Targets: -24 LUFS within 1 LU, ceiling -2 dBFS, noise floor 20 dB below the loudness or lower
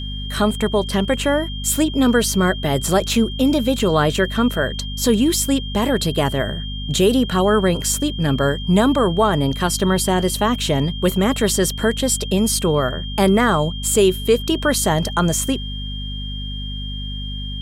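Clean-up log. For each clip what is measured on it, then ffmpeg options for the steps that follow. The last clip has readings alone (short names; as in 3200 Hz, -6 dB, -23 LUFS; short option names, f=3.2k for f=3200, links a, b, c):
hum 50 Hz; harmonics up to 250 Hz; hum level -26 dBFS; steady tone 3200 Hz; tone level -31 dBFS; loudness -19.0 LUFS; peak -4.0 dBFS; loudness target -24.0 LUFS
-> -af "bandreject=f=50:t=h:w=6,bandreject=f=100:t=h:w=6,bandreject=f=150:t=h:w=6,bandreject=f=200:t=h:w=6,bandreject=f=250:t=h:w=6"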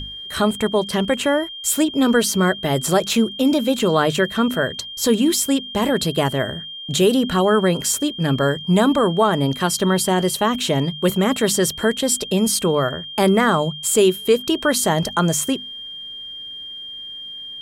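hum none; steady tone 3200 Hz; tone level -31 dBFS
-> -af "bandreject=f=3.2k:w=30"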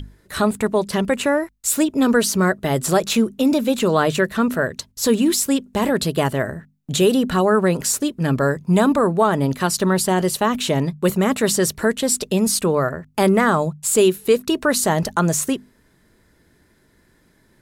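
steady tone none; loudness -19.0 LUFS; peak -4.0 dBFS; loudness target -24.0 LUFS
-> -af "volume=-5dB"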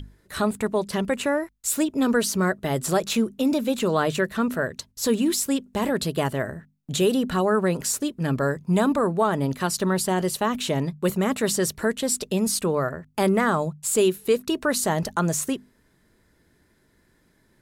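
loudness -24.0 LUFS; peak -9.0 dBFS; noise floor -63 dBFS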